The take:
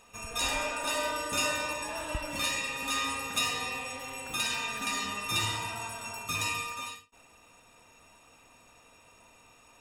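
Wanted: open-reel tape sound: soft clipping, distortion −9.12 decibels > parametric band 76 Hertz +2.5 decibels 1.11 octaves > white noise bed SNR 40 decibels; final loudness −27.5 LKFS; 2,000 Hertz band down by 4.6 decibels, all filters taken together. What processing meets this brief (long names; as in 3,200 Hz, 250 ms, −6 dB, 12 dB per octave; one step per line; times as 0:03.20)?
parametric band 2,000 Hz −6.5 dB
soft clipping −34.5 dBFS
parametric band 76 Hz +2.5 dB 1.11 octaves
white noise bed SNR 40 dB
level +10 dB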